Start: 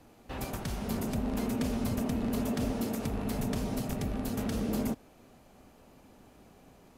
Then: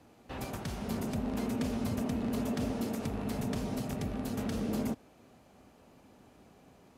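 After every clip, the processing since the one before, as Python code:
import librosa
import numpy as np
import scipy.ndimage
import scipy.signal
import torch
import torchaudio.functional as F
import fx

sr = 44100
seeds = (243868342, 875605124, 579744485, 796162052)

y = scipy.signal.sosfilt(scipy.signal.butter(2, 57.0, 'highpass', fs=sr, output='sos'), x)
y = fx.high_shelf(y, sr, hz=12000.0, db=-8.0)
y = y * librosa.db_to_amplitude(-1.5)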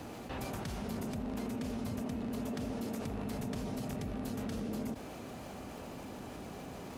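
y = fx.dmg_crackle(x, sr, seeds[0], per_s=460.0, level_db=-65.0)
y = fx.env_flatten(y, sr, amount_pct=70)
y = y * librosa.db_to_amplitude(-6.5)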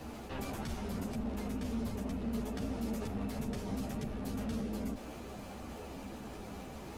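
y = fx.octave_divider(x, sr, octaves=2, level_db=-4.0)
y = fx.ensemble(y, sr)
y = y * librosa.db_to_amplitude(2.5)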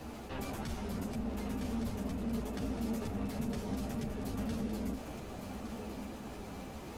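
y = x + 10.0 ** (-9.0 / 20.0) * np.pad(x, (int(1162 * sr / 1000.0), 0))[:len(x)]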